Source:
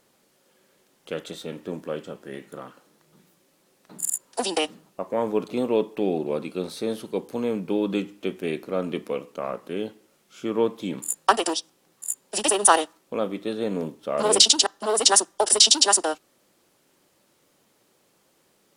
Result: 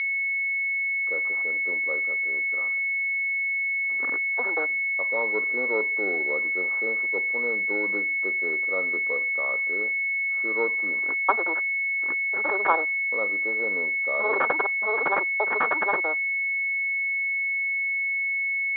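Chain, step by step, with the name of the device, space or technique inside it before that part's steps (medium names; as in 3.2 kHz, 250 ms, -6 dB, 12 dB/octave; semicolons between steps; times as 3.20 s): toy sound module (decimation joined by straight lines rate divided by 6×; class-D stage that switches slowly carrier 2.2 kHz; cabinet simulation 660–3800 Hz, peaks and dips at 710 Hz -9 dB, 1.3 kHz +4 dB, 2.5 kHz -5 dB); trim +3 dB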